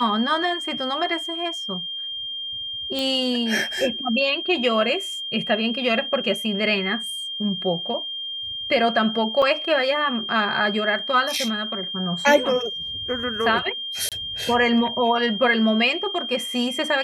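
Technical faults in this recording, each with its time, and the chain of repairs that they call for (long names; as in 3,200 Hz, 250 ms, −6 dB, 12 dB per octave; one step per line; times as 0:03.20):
whistle 3,200 Hz −28 dBFS
0:02.99: click
0:09.42: drop-out 4.3 ms
0:14.09–0:14.12: drop-out 27 ms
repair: click removal
notch filter 3,200 Hz, Q 30
repair the gap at 0:09.42, 4.3 ms
repair the gap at 0:14.09, 27 ms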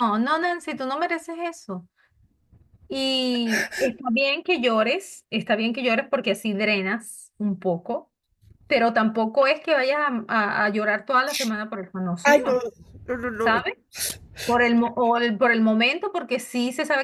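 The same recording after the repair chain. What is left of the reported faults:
none of them is left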